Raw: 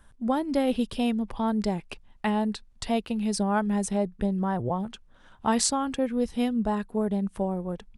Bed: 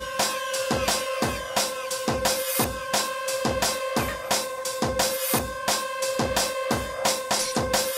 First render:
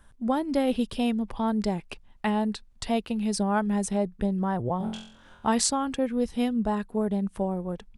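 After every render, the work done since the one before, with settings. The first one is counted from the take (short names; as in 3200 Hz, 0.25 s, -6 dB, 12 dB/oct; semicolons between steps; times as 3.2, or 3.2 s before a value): 4.78–5.47 flutter echo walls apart 3.9 m, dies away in 0.55 s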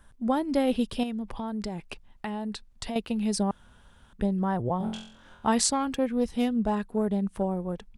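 1.03–2.96 compressor 4:1, threshold -30 dBFS; 3.51–4.13 room tone; 5.72–7.43 self-modulated delay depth 0.059 ms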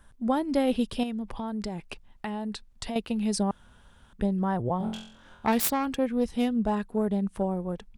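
4.78–5.86 self-modulated delay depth 0.26 ms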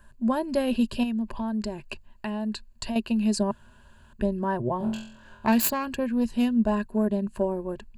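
ripple EQ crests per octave 1.4, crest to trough 11 dB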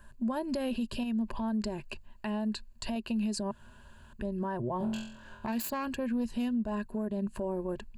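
compressor, threshold -27 dBFS, peak gain reduction 10 dB; limiter -25 dBFS, peak gain reduction 8.5 dB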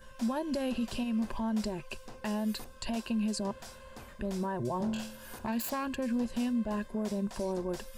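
add bed -24.5 dB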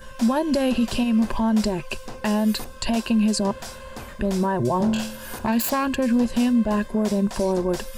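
gain +11.5 dB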